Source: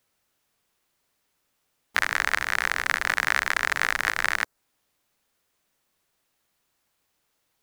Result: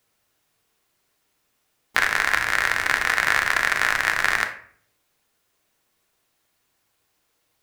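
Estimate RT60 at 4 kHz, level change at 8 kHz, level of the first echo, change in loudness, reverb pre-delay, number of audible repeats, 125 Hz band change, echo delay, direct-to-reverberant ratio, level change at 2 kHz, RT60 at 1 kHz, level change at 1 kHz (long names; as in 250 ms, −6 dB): 0.35 s, +3.5 dB, no echo audible, +4.0 dB, 3 ms, no echo audible, +4.5 dB, no echo audible, 4.0 dB, +4.0 dB, 0.50 s, +4.0 dB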